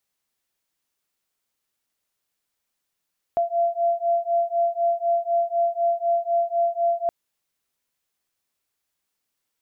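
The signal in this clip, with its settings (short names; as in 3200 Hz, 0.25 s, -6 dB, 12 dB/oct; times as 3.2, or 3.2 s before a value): beating tones 682 Hz, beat 4 Hz, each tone -22.5 dBFS 3.72 s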